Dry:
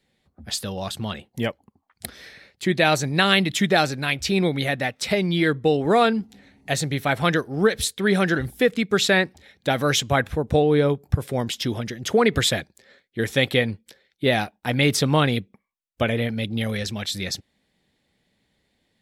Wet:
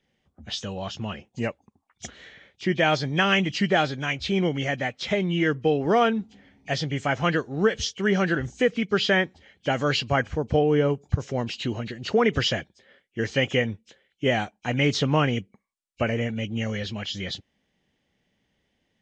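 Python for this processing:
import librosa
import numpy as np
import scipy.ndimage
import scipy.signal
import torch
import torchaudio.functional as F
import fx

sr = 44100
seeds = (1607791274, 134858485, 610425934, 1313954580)

y = fx.freq_compress(x, sr, knee_hz=2200.0, ratio=1.5)
y = F.gain(torch.from_numpy(y), -2.5).numpy()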